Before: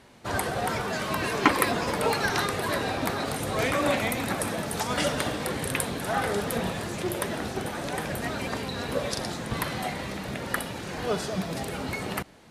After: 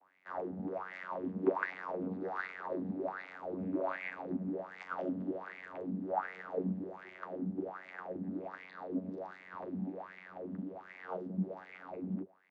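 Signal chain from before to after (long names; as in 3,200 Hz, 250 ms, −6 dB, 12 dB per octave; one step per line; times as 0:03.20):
channel vocoder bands 16, saw 92.8 Hz
LFO wah 1.3 Hz 210–2,200 Hz, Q 7.3
level +3.5 dB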